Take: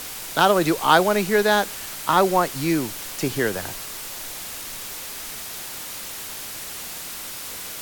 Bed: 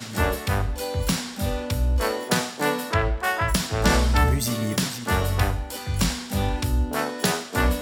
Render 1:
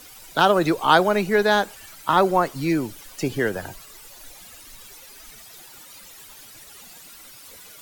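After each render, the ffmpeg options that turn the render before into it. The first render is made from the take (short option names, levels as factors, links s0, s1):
-af "afftdn=nr=14:nf=-34"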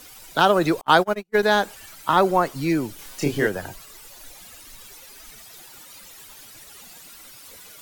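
-filter_complex "[0:a]asettb=1/sr,asplit=3[s0][s1][s2];[s0]atrim=end=0.814[s3];[s1]atrim=start=0.81:end=1.43,asetpts=PTS-STARTPTS,afade=t=in:d=0.004:c=qsin,afade=t=out:st=0.616:d=0.004:c=qsin,agate=range=0.00447:threshold=0.112:ratio=16:release=100:detection=peak[s4];[s2]atrim=start=1.426[s5];[s3][s4]acrossfade=d=0.004:c1=hsin:c2=qsin[s6];[s6][s5]acrossfade=d=0.004:c1=qsin:c2=hsin,asettb=1/sr,asplit=3[s7][s8][s9];[s7]atrim=end=2.964[s10];[s8]atrim=start=2.96:end=3.47,asetpts=PTS-STARTPTS,afade=t=in:d=0.004:c=qsin,afade=t=out:st=0.506:d=0.004:c=qsin,asplit=2[s11][s12];[s12]adelay=28,volume=0.794[s13];[s11][s13]amix=inputs=2:normalize=0,atrim=end_sample=22491[s14];[s9]atrim=start=3.466[s15];[s10][s14]acrossfade=d=0.004:c1=hsin:c2=qsin[s16];[s16][s15]acrossfade=d=0.004:c1=qsin:c2=hsin"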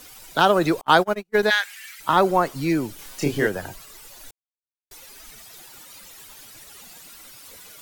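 -filter_complex "[0:a]asplit=3[s0][s1][s2];[s0]afade=t=out:st=1.49:d=0.02[s3];[s1]highpass=f=2000:t=q:w=3.3,afade=t=in:st=1.49:d=0.02,afade=t=out:st=1.99:d=0.02[s4];[s2]afade=t=in:st=1.99:d=0.02[s5];[s3][s4][s5]amix=inputs=3:normalize=0,asplit=3[s6][s7][s8];[s6]atrim=end=4.31,asetpts=PTS-STARTPTS,afade=t=out:st=4.306:d=0.004:c=hsin[s9];[s7]atrim=start=4.31:end=4.91,asetpts=PTS-STARTPTS,volume=0[s10];[s8]atrim=start=4.91,asetpts=PTS-STARTPTS,afade=t=in:d=0.004:c=hsin[s11];[s9][s10][s11]concat=n=3:v=0:a=1"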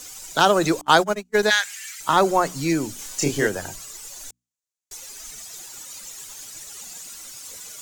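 -af "equalizer=f=6900:t=o:w=0.82:g=13,bandreject=f=60:t=h:w=6,bandreject=f=120:t=h:w=6,bandreject=f=180:t=h:w=6,bandreject=f=240:t=h:w=6,bandreject=f=300:t=h:w=6"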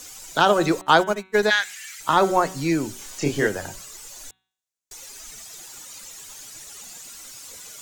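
-filter_complex "[0:a]acrossover=split=4300[s0][s1];[s1]acompressor=threshold=0.0141:ratio=4:attack=1:release=60[s2];[s0][s2]amix=inputs=2:normalize=0,bandreject=f=188.6:t=h:w=4,bandreject=f=377.2:t=h:w=4,bandreject=f=565.8:t=h:w=4,bandreject=f=754.4:t=h:w=4,bandreject=f=943:t=h:w=4,bandreject=f=1131.6:t=h:w=4,bandreject=f=1320.2:t=h:w=4,bandreject=f=1508.8:t=h:w=4,bandreject=f=1697.4:t=h:w=4,bandreject=f=1886:t=h:w=4,bandreject=f=2074.6:t=h:w=4,bandreject=f=2263.2:t=h:w=4,bandreject=f=2451.8:t=h:w=4,bandreject=f=2640.4:t=h:w=4,bandreject=f=2829:t=h:w=4,bandreject=f=3017.6:t=h:w=4,bandreject=f=3206.2:t=h:w=4,bandreject=f=3394.8:t=h:w=4,bandreject=f=3583.4:t=h:w=4,bandreject=f=3772:t=h:w=4,bandreject=f=3960.6:t=h:w=4,bandreject=f=4149.2:t=h:w=4"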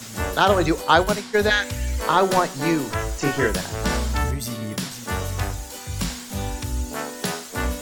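-filter_complex "[1:a]volume=0.631[s0];[0:a][s0]amix=inputs=2:normalize=0"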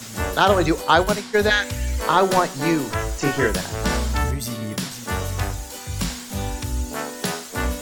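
-af "volume=1.12,alimiter=limit=0.794:level=0:latency=1"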